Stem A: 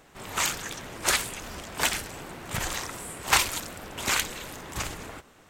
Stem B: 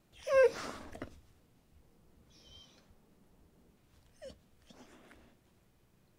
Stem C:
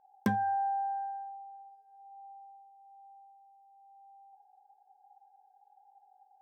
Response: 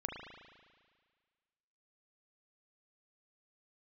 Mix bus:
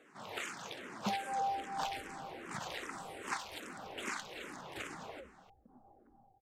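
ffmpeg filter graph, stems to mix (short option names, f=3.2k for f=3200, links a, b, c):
-filter_complex "[0:a]acompressor=threshold=-29dB:ratio=8,highpass=200,volume=-4.5dB,asplit=2[a][b];[b]volume=-11dB[c];[1:a]lowpass=f=1k:w=0.5412,lowpass=f=1k:w=1.3066,dynaudnorm=f=290:g=7:m=11.5dB,adelay=950,volume=-13.5dB[d];[2:a]aecho=1:1:5.1:0.87,adelay=800,volume=-8dB[e];[3:a]atrim=start_sample=2205[f];[c][f]afir=irnorm=-1:irlink=0[g];[a][d][e][g]amix=inputs=4:normalize=0,aemphasis=mode=reproduction:type=50fm,asplit=2[h][i];[i]afreqshift=-2.5[j];[h][j]amix=inputs=2:normalize=1"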